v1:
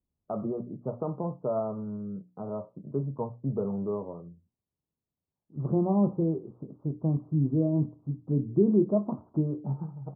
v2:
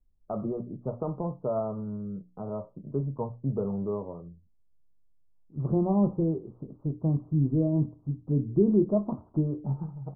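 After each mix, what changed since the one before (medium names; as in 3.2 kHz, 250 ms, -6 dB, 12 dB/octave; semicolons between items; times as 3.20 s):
master: remove high-pass 110 Hz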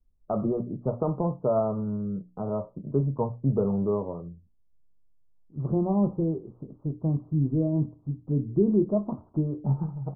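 first voice +5.0 dB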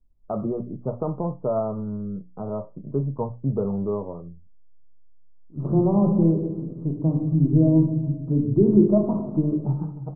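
reverb: on, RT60 1.0 s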